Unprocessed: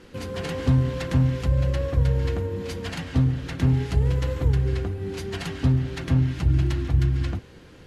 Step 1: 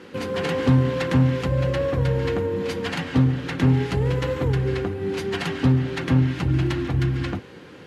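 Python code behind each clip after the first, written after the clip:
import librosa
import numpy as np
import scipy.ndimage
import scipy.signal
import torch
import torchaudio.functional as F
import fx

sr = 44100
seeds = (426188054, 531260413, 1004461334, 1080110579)

y = scipy.signal.sosfilt(scipy.signal.butter(2, 140.0, 'highpass', fs=sr, output='sos'), x)
y = fx.bass_treble(y, sr, bass_db=-2, treble_db=-7)
y = fx.notch(y, sr, hz=660.0, q=17.0)
y = y * librosa.db_to_amplitude(7.0)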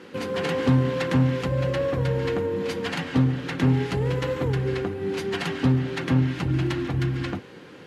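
y = fx.peak_eq(x, sr, hz=67.0, db=-7.5, octaves=1.1)
y = y * librosa.db_to_amplitude(-1.0)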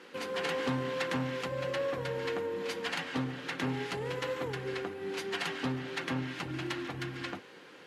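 y = fx.highpass(x, sr, hz=660.0, slope=6)
y = y * librosa.db_to_amplitude(-3.5)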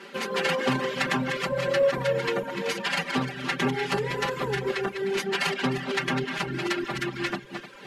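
y = fx.reverse_delay_fb(x, sr, ms=152, feedback_pct=52, wet_db=-6.0)
y = fx.dereverb_blind(y, sr, rt60_s=0.7)
y = y + 0.95 * np.pad(y, (int(5.1 * sr / 1000.0), 0))[:len(y)]
y = y * librosa.db_to_amplitude(6.0)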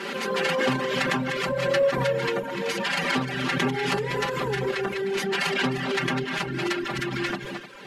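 y = fx.pre_swell(x, sr, db_per_s=30.0)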